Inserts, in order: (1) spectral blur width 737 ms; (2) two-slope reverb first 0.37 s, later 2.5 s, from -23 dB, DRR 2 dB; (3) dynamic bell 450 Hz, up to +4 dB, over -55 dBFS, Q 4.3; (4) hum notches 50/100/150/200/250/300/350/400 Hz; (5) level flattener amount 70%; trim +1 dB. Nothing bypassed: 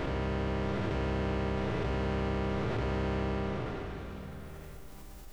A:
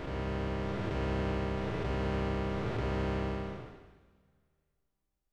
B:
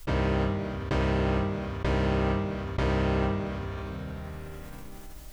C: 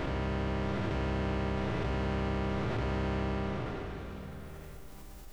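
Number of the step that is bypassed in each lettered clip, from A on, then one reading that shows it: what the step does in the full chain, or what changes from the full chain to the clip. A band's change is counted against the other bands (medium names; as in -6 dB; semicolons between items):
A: 5, momentary loudness spread change -10 LU; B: 1, crest factor change +1.5 dB; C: 3, 500 Hz band -1.5 dB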